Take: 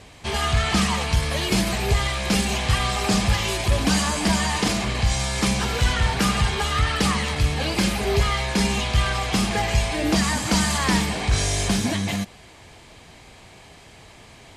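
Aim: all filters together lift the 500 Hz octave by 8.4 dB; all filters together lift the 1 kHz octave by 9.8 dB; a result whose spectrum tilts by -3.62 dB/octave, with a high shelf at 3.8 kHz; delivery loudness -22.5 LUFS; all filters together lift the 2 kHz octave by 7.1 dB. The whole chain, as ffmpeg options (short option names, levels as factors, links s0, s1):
-af "equalizer=f=500:t=o:g=8,equalizer=f=1000:t=o:g=8.5,equalizer=f=2000:t=o:g=5,highshelf=f=3800:g=3,volume=0.531"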